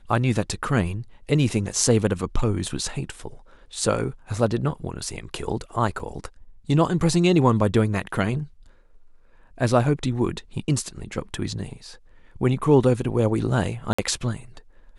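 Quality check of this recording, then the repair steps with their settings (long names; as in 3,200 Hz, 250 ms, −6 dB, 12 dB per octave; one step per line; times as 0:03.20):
0:05.99–0:06.00: drop-out 5.7 ms
0:13.93–0:13.98: drop-out 55 ms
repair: repair the gap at 0:05.99, 5.7 ms
repair the gap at 0:13.93, 55 ms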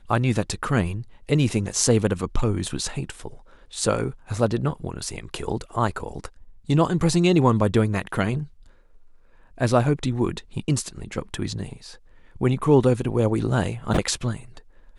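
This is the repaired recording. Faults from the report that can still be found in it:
none of them is left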